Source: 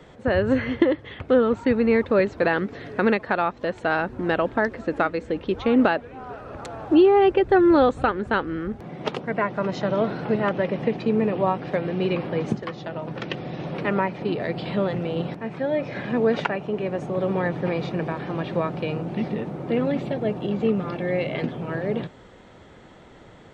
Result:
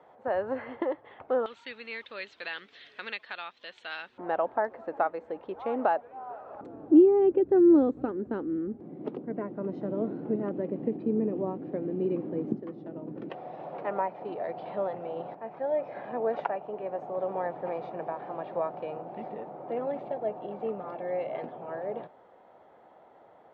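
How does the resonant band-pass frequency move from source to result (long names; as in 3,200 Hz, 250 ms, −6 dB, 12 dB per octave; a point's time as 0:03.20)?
resonant band-pass, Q 2.5
810 Hz
from 0:01.46 3,400 Hz
from 0:04.18 780 Hz
from 0:06.61 300 Hz
from 0:13.30 740 Hz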